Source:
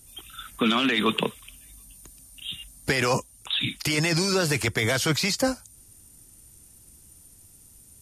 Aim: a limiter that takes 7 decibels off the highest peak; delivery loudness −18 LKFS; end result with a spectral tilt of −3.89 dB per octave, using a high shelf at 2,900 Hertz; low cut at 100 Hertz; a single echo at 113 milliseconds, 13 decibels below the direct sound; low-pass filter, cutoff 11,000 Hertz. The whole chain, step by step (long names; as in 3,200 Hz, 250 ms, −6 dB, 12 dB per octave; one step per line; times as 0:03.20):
high-pass filter 100 Hz
low-pass filter 11,000 Hz
high-shelf EQ 2,900 Hz −3.5 dB
brickwall limiter −17.5 dBFS
single-tap delay 113 ms −13 dB
level +10 dB